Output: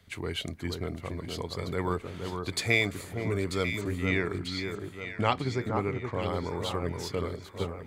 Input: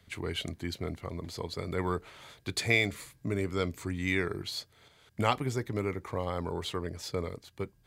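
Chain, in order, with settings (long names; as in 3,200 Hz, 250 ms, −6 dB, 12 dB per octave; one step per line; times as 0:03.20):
0:03.81–0:06.22: low-pass filter 5,100 Hz 12 dB per octave
delay that swaps between a low-pass and a high-pass 470 ms, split 1,500 Hz, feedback 65%, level −5 dB
level +1 dB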